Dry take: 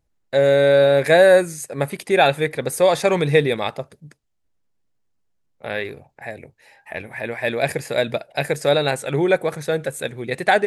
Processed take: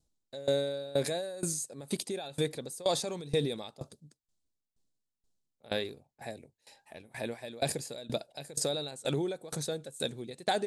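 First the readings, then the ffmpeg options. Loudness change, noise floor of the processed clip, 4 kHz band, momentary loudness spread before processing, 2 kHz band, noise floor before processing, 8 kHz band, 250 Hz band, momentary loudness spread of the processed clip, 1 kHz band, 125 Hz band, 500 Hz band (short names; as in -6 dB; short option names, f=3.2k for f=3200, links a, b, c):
-15.5 dB, under -85 dBFS, -9.0 dB, 19 LU, -21.5 dB, -69 dBFS, -3.5 dB, -12.0 dB, 14 LU, -17.0 dB, -13.0 dB, -17.0 dB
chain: -af "equalizer=f=250:t=o:w=1:g=5,equalizer=f=2k:t=o:w=1:g=-11,equalizer=f=4k:t=o:w=1:g=9,equalizer=f=8k:t=o:w=1:g=10,alimiter=limit=-13dB:level=0:latency=1:release=53,aeval=exprs='val(0)*pow(10,-21*if(lt(mod(2.1*n/s,1),2*abs(2.1)/1000),1-mod(2.1*n/s,1)/(2*abs(2.1)/1000),(mod(2.1*n/s,1)-2*abs(2.1)/1000)/(1-2*abs(2.1)/1000))/20)':c=same,volume=-4dB"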